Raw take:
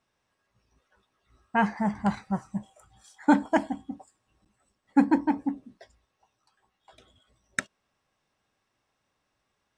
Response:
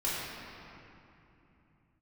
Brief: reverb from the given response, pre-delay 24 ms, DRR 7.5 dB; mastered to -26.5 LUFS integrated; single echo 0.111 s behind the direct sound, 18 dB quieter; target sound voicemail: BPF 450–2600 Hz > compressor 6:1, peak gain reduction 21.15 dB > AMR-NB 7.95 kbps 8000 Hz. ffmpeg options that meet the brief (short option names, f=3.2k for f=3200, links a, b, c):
-filter_complex "[0:a]aecho=1:1:111:0.126,asplit=2[a][b];[1:a]atrim=start_sample=2205,adelay=24[c];[b][c]afir=irnorm=-1:irlink=0,volume=-15.5dB[d];[a][d]amix=inputs=2:normalize=0,highpass=450,lowpass=2.6k,acompressor=threshold=-41dB:ratio=6,volume=22dB" -ar 8000 -c:a libopencore_amrnb -b:a 7950